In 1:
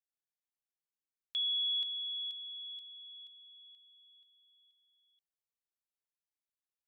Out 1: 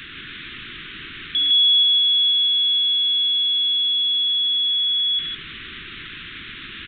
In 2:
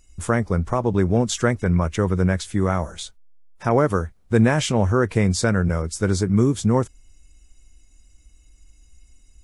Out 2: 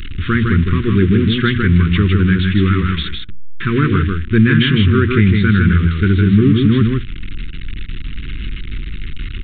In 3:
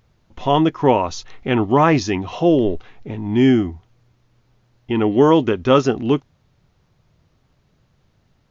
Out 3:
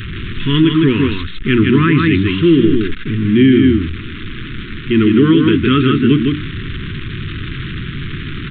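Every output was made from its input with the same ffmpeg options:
ffmpeg -i in.wav -filter_complex "[0:a]aeval=exprs='val(0)+0.5*0.0596*sgn(val(0))':channel_layout=same,equalizer=frequency=1000:width_type=o:width=0.27:gain=7,bandreject=frequency=60:width_type=h:width=6,bandreject=frequency=120:width_type=h:width=6,bandreject=frequency=180:width_type=h:width=6,bandreject=frequency=240:width_type=h:width=6,bandreject=frequency=300:width_type=h:width=6,asplit=2[link_01][link_02];[link_02]aecho=0:1:157:0.631[link_03];[link_01][link_03]amix=inputs=2:normalize=0,aresample=8000,aresample=44100,asuperstop=centerf=710:order=8:qfactor=0.7,alimiter=level_in=8dB:limit=-1dB:release=50:level=0:latency=1,volume=-1dB" out.wav

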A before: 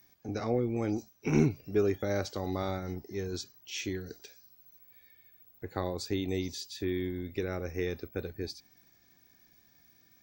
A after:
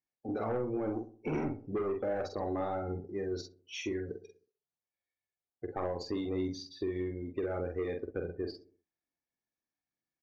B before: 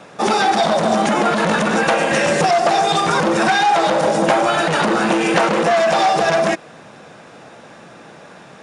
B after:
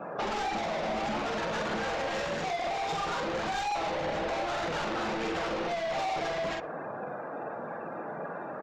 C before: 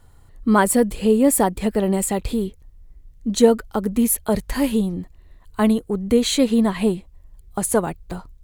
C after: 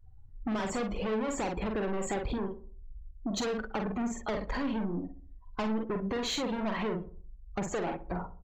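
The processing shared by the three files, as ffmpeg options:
ffmpeg -i in.wav -filter_complex "[0:a]equalizer=frequency=700:width=0.41:gain=9.5,alimiter=limit=-3dB:level=0:latency=1:release=14,aresample=16000,asoftclip=type=hard:threshold=-19.5dB,aresample=44100,afftdn=noise_reduction=30:noise_floor=-38,aphaser=in_gain=1:out_gain=1:delay=3.9:decay=0.29:speed=1.7:type=triangular,asplit=2[link_01][link_02];[link_02]adelay=46,volume=-5dB[link_03];[link_01][link_03]amix=inputs=2:normalize=0,asoftclip=type=tanh:threshold=-14dB,acompressor=threshold=-25dB:ratio=5,asplit=2[link_04][link_05];[link_05]adelay=64,lowpass=frequency=1000:poles=1,volume=-12.5dB,asplit=2[link_06][link_07];[link_07]adelay=64,lowpass=frequency=1000:poles=1,volume=0.48,asplit=2[link_08][link_09];[link_09]adelay=64,lowpass=frequency=1000:poles=1,volume=0.48,asplit=2[link_10][link_11];[link_11]adelay=64,lowpass=frequency=1000:poles=1,volume=0.48,asplit=2[link_12][link_13];[link_13]adelay=64,lowpass=frequency=1000:poles=1,volume=0.48[link_14];[link_06][link_08][link_10][link_12][link_14]amix=inputs=5:normalize=0[link_15];[link_04][link_15]amix=inputs=2:normalize=0,volume=-5.5dB" out.wav

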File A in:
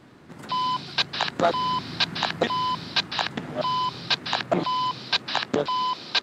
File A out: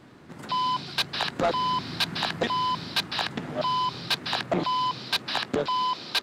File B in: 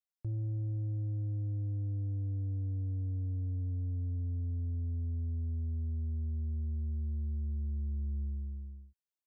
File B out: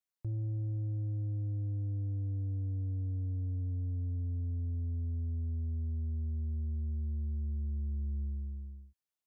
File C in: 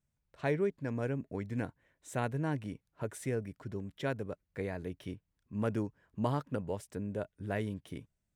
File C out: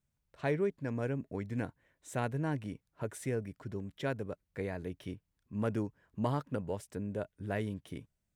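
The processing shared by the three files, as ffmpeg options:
ffmpeg -i in.wav -af "asoftclip=type=tanh:threshold=-17dB" out.wav

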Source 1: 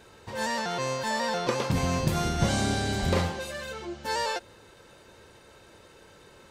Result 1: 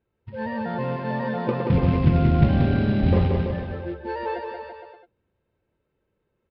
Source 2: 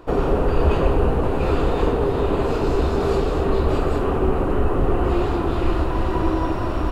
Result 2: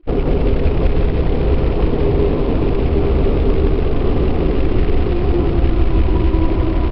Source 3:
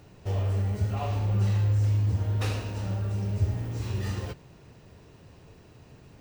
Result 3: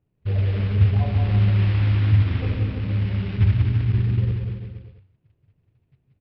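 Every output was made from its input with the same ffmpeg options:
ffmpeg -i in.wav -filter_complex "[0:a]bandreject=frequency=94.07:width_type=h:width=4,bandreject=frequency=188.14:width_type=h:width=4,bandreject=frequency=282.21:width_type=h:width=4,bandreject=frequency=376.28:width_type=h:width=4,bandreject=frequency=470.35:width_type=h:width=4,bandreject=frequency=564.42:width_type=h:width=4,bandreject=frequency=658.49:width_type=h:width=4,bandreject=frequency=752.56:width_type=h:width=4,bandreject=frequency=846.63:width_type=h:width=4,bandreject=frequency=940.7:width_type=h:width=4,afftdn=noise_reduction=27:noise_floor=-30,tiltshelf=frequency=660:gain=9,acompressor=threshold=-12dB:ratio=6,aresample=11025,acrusher=bits=6:mode=log:mix=0:aa=0.000001,aresample=44100,lowpass=frequency=2600:width_type=q:width=1.7,asplit=2[link_01][link_02];[link_02]aecho=0:1:180|333|463|573.6|667.6:0.631|0.398|0.251|0.158|0.1[link_03];[link_01][link_03]amix=inputs=2:normalize=0" out.wav

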